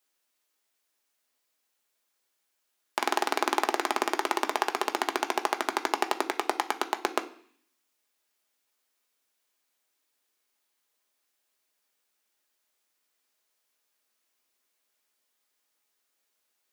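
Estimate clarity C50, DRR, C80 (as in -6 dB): 15.5 dB, 6.0 dB, 19.5 dB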